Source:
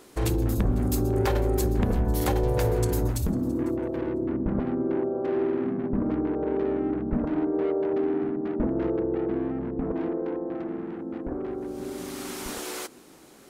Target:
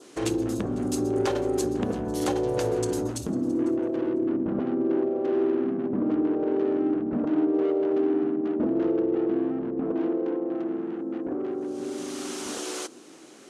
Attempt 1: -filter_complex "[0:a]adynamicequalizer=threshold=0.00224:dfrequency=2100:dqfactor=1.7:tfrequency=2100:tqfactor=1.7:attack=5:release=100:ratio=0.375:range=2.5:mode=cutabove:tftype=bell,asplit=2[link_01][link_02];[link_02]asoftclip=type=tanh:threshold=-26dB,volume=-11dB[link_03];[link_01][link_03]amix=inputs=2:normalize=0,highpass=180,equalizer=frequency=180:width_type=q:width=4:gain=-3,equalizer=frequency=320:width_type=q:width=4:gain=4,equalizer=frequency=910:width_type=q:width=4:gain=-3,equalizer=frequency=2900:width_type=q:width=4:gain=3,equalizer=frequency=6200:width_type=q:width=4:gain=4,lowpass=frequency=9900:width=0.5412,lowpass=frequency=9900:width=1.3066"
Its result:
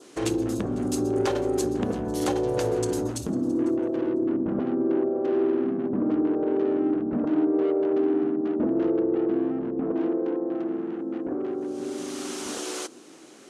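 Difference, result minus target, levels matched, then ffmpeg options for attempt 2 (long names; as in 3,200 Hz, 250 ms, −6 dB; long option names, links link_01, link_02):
soft clipping: distortion −5 dB
-filter_complex "[0:a]adynamicequalizer=threshold=0.00224:dfrequency=2100:dqfactor=1.7:tfrequency=2100:tqfactor=1.7:attack=5:release=100:ratio=0.375:range=2.5:mode=cutabove:tftype=bell,asplit=2[link_01][link_02];[link_02]asoftclip=type=tanh:threshold=-35dB,volume=-11dB[link_03];[link_01][link_03]amix=inputs=2:normalize=0,highpass=180,equalizer=frequency=180:width_type=q:width=4:gain=-3,equalizer=frequency=320:width_type=q:width=4:gain=4,equalizer=frequency=910:width_type=q:width=4:gain=-3,equalizer=frequency=2900:width_type=q:width=4:gain=3,equalizer=frequency=6200:width_type=q:width=4:gain=4,lowpass=frequency=9900:width=0.5412,lowpass=frequency=9900:width=1.3066"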